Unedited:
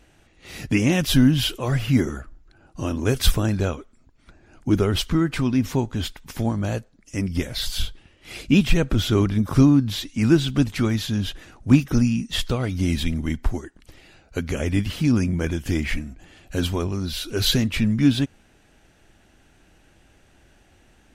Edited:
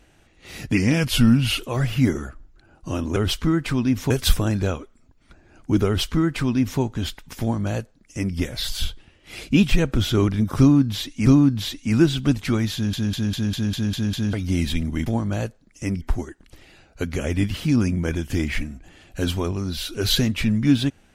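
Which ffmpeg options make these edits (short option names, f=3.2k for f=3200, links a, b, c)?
-filter_complex "[0:a]asplit=16[a][b][c][d][e][f][g][h][i][j][k][l][m][n][o][p];[a]atrim=end=0.774[q];[b]atrim=start=0.77:end=1.51,asetpts=PTS-STARTPTS,asetrate=39690,aresample=44100[r];[c]atrim=start=1.506:end=3.082[s];[d]atrim=start=4.838:end=5.782[t];[e]atrim=start=3.078:end=10.242[u];[f]atrim=start=9.568:end=11.242[v];[g]atrim=start=11.038:end=11.242[w];[h]atrim=start=11.038:end=11.242[x];[i]atrim=start=11.038:end=11.242[y];[j]atrim=start=11.038:end=11.242[z];[k]atrim=start=11.038:end=11.242[aa];[l]atrim=start=11.038:end=11.242[ab];[m]atrim=start=11.038:end=11.242[ac];[n]atrim=start=12.638:end=13.372[ad];[o]atrim=start=6.378:end=7.332[ae];[p]atrim=start=13.368[af];[q][r]acrossfade=d=0.004:c1=hsin:c2=hsin[ag];[ag][s]acrossfade=d=0.004:c1=hsin:c2=hsin[ah];[ah][t]acrossfade=d=0.004:c1=hsin:c2=hsin[ai];[ai][u]acrossfade=d=0.004:c1=hsin:c2=hsin[aj];[aj][v]acrossfade=d=0.004:c1=hsin:c2=hsin[ak];[ak][w]acrossfade=d=0.004:c1=hsin:c2=hsin[al];[al][x]acrossfade=d=0.004:c1=hsin:c2=hsin[am];[am][y]acrossfade=d=0.004:c1=hsin:c2=hsin[an];[an][z]acrossfade=d=0.004:c1=hsin:c2=hsin[ao];[ao][aa]acrossfade=d=0.004:c1=hsin:c2=hsin[ap];[ap][ab]acrossfade=d=0.004:c1=hsin:c2=hsin[aq];[aq][ac]acrossfade=d=0.004:c1=hsin:c2=hsin[ar];[ar][ad]acrossfade=d=0.004:c1=hsin:c2=hsin[as];[as][ae]acrossfade=d=0.004:c1=hsin:c2=hsin[at];[at][af]acrossfade=d=0.004:c1=hsin:c2=hsin"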